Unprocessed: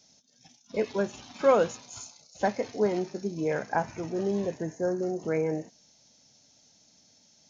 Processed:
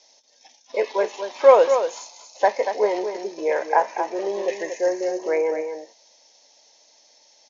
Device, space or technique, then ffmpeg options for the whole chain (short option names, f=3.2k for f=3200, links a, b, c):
phone speaker on a table: -filter_complex "[0:a]highpass=f=400:w=0.5412,highpass=f=400:w=1.3066,equalizer=f=550:t=q:w=4:g=4,equalizer=f=950:t=q:w=4:g=8,equalizer=f=1.4k:t=q:w=4:g=-8,equalizer=f=1.9k:t=q:w=4:g=5,lowpass=f=6.4k:w=0.5412,lowpass=f=6.4k:w=1.3066,asettb=1/sr,asplit=3[a][b][c];[a]atrim=end=4.484[d];[b]atrim=start=4.48:end=5.19,asetpts=PTS-STARTPTS,afade=t=in:d=0.004:c=qsin,afade=t=out:st=0.706:d=0.004:c=qsin,highshelf=f=1.7k:t=q:w=3:g=7[e];[c]atrim=start=5.186[f];[d][e]acrossfade=d=0.004:c1=hsin:c2=qsin[g];[g][f]acrossfade=d=0.004:c1=qsin:c2=hsin,aecho=1:1:235:0.398,volume=6dB"